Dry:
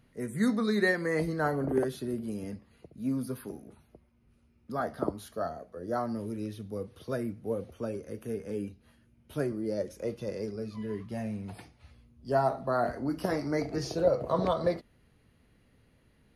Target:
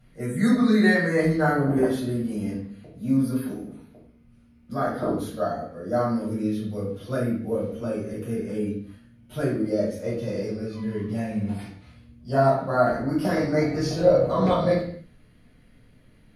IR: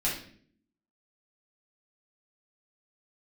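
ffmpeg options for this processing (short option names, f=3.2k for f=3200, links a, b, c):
-filter_complex "[1:a]atrim=start_sample=2205,afade=t=out:st=0.31:d=0.01,atrim=end_sample=14112,asetrate=37926,aresample=44100[a];[0:a][a]afir=irnorm=-1:irlink=0,volume=-2dB"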